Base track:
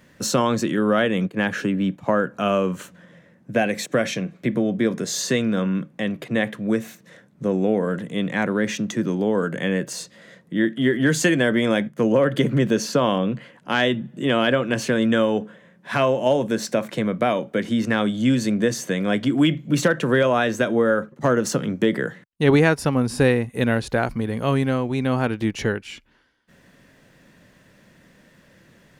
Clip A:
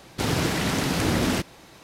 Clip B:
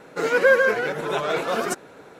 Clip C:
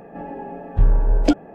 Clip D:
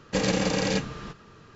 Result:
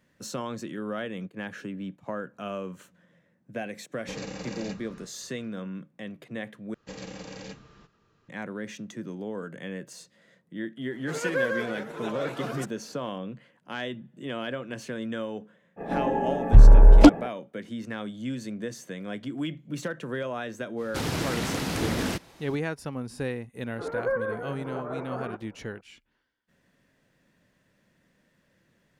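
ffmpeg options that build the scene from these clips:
ffmpeg -i bed.wav -i cue0.wav -i cue1.wav -i cue2.wav -i cue3.wav -filter_complex "[4:a]asplit=2[link_01][link_02];[2:a]asplit=2[link_03][link_04];[0:a]volume=-14dB[link_05];[link_01]bandreject=frequency=3200:width=9.8[link_06];[3:a]aeval=exprs='0.708*sin(PI/2*1.58*val(0)/0.708)':channel_layout=same[link_07];[link_04]lowpass=frequency=1400:width=0.5412,lowpass=frequency=1400:width=1.3066[link_08];[link_05]asplit=2[link_09][link_10];[link_09]atrim=end=6.744[link_11];[link_02]atrim=end=1.55,asetpts=PTS-STARTPTS,volume=-16dB[link_12];[link_10]atrim=start=8.286[link_13];[link_06]atrim=end=1.55,asetpts=PTS-STARTPTS,volume=-13dB,afade=type=in:duration=0.004:curve=hsin,afade=type=out:start_time=1.546:duration=0.004:curve=hsin,adelay=3940[link_14];[link_03]atrim=end=2.19,asetpts=PTS-STARTPTS,volume=-11dB,afade=type=in:duration=0.004:curve=hsin,afade=type=out:start_time=2.186:duration=0.004:curve=hsin,adelay=10910[link_15];[link_07]atrim=end=1.54,asetpts=PTS-STARTPTS,volume=-1.5dB,afade=type=in:duration=0.05,afade=type=out:start_time=1.49:duration=0.05,adelay=15760[link_16];[1:a]atrim=end=1.83,asetpts=PTS-STARTPTS,volume=-5dB,afade=type=in:duration=0.05,afade=type=out:start_time=1.78:duration=0.05,adelay=20760[link_17];[link_08]atrim=end=2.19,asetpts=PTS-STARTPTS,volume=-10.5dB,afade=type=in:duration=0.004:curve=hsin,afade=type=out:start_time=2.186:duration=0.004:curve=hsin,adelay=23620[link_18];[link_11][link_12]acrossfade=duration=0.004:curve1=hsin:curve2=hsin[link_19];[link_19][link_13]acrossfade=duration=0.004:curve1=hsin:curve2=hsin[link_20];[link_20][link_14][link_15][link_16][link_17][link_18]amix=inputs=6:normalize=0" out.wav

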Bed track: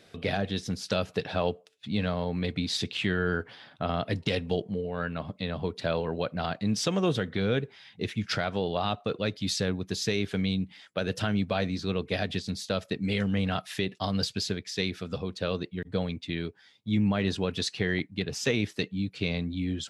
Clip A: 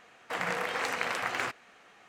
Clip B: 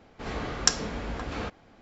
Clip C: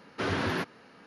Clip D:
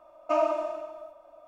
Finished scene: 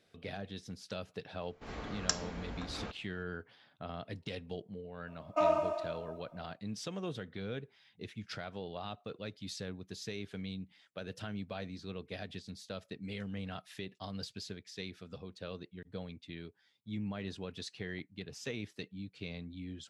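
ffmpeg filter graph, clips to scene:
ffmpeg -i bed.wav -i cue0.wav -i cue1.wav -i cue2.wav -i cue3.wav -filter_complex "[0:a]volume=-13.5dB[link_01];[2:a]atrim=end=1.81,asetpts=PTS-STARTPTS,volume=-9.5dB,afade=type=in:duration=0.004:curve=hsin,afade=type=out:start_time=1.806:duration=0.004:curve=hsin,adelay=1420[link_02];[4:a]atrim=end=1.47,asetpts=PTS-STARTPTS,volume=-3.5dB,afade=type=in:duration=0.004:curve=hsin,afade=type=out:start_time=1.466:duration=0.004:curve=hsin,adelay=5070[link_03];[link_01][link_02][link_03]amix=inputs=3:normalize=0" out.wav

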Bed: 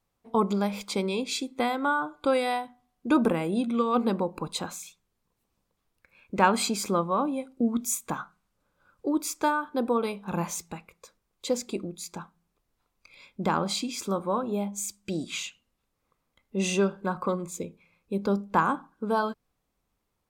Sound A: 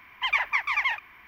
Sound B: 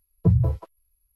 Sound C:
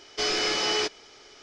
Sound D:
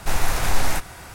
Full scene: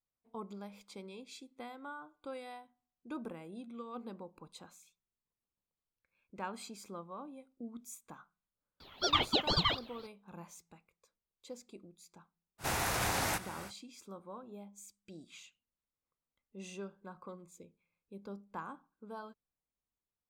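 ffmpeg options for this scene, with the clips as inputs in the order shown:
ffmpeg -i bed.wav -i cue0.wav -i cue1.wav -i cue2.wav -i cue3.wav -filter_complex "[0:a]volume=-20dB[link_01];[1:a]aeval=exprs='val(0)*sin(2*PI*1700*n/s+1700*0.45/4*sin(2*PI*4*n/s))':channel_layout=same[link_02];[4:a]highpass=94[link_03];[link_02]atrim=end=1.27,asetpts=PTS-STARTPTS,volume=-1.5dB,afade=type=in:duration=0.004:curve=hsin,afade=type=out:start_time=1.266:duration=0.004:curve=hsin,adelay=8800[link_04];[link_03]atrim=end=1.14,asetpts=PTS-STARTPTS,volume=-6.5dB,afade=type=in:duration=0.05,afade=type=out:start_time=1.09:duration=0.05,adelay=12580[link_05];[link_01][link_04][link_05]amix=inputs=3:normalize=0" out.wav

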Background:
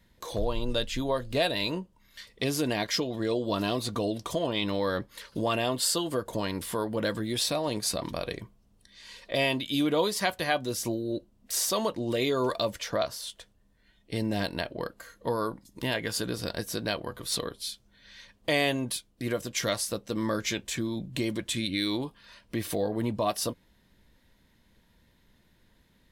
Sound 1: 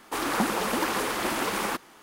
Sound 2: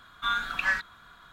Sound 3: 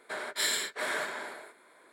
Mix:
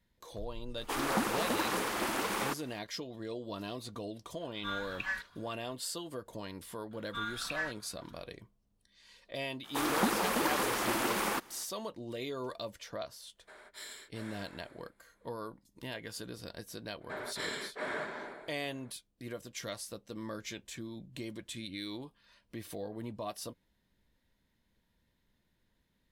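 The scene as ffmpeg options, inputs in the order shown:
ffmpeg -i bed.wav -i cue0.wav -i cue1.wav -i cue2.wav -filter_complex "[1:a]asplit=2[link_01][link_02];[2:a]asplit=2[link_03][link_04];[3:a]asplit=2[link_05][link_06];[0:a]volume=-12dB[link_07];[link_03]bandreject=frequency=1300:width=7.2[link_08];[link_02]equalizer=frequency=14000:width_type=o:width=0.68:gain=3[link_09];[link_06]aemphasis=mode=reproduction:type=riaa[link_10];[link_01]atrim=end=2.02,asetpts=PTS-STARTPTS,volume=-5.5dB,afade=type=in:duration=0.004:curve=hsin,afade=type=out:start_time=2.016:duration=0.004:curve=hsin,adelay=770[link_11];[link_08]atrim=end=1.32,asetpts=PTS-STARTPTS,volume=-9.5dB,afade=type=in:duration=0.004:curve=hsin,afade=type=out:start_time=1.316:duration=0.004:curve=hsin,adelay=194481S[link_12];[link_04]atrim=end=1.32,asetpts=PTS-STARTPTS,volume=-10.5dB,afade=type=in:duration=0.004:curve=hsin,afade=type=out:start_time=1.316:duration=0.004:curve=hsin,adelay=6910[link_13];[link_09]atrim=end=2.02,asetpts=PTS-STARTPTS,volume=-4dB,afade=type=in:duration=0.02,afade=type=out:start_time=2:duration=0.02,adelay=9630[link_14];[link_05]atrim=end=1.92,asetpts=PTS-STARTPTS,volume=-17.5dB,afade=type=in:duration=0.004:curve=hsin,afade=type=out:start_time=1.916:duration=0.004:curve=hsin,adelay=13380[link_15];[link_10]atrim=end=1.92,asetpts=PTS-STARTPTS,volume=-4dB,afade=type=in:duration=0.02,afade=type=out:start_time=1.9:duration=0.02,adelay=749700S[link_16];[link_07][link_11][link_12][link_13][link_14][link_15][link_16]amix=inputs=7:normalize=0" out.wav

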